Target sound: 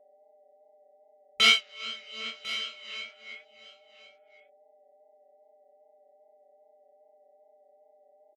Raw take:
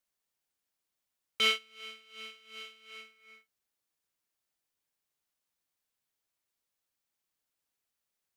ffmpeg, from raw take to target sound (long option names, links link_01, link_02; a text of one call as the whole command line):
ffmpeg -i in.wav -filter_complex "[0:a]aphaser=in_gain=1:out_gain=1:delay=2:decay=0.36:speed=0.44:type=triangular,afftfilt=real='re*gte(hypot(re,im),0.000708)':imag='im*gte(hypot(re,im),0.000708)':win_size=1024:overlap=0.75,aecho=1:1:5.6:0.56,asplit=2[link_01][link_02];[link_02]acompressor=threshold=-51dB:ratio=16,volume=-1dB[link_03];[link_01][link_03]amix=inputs=2:normalize=0,aeval=exprs='val(0)+0.000794*sin(2*PI*600*n/s)':channel_layout=same,afwtdn=0.00141,flanger=delay=19.5:depth=6.1:speed=2.5,asplit=2[link_04][link_05];[link_05]aecho=0:1:1049:0.158[link_06];[link_04][link_06]amix=inputs=2:normalize=0,volume=8.5dB" out.wav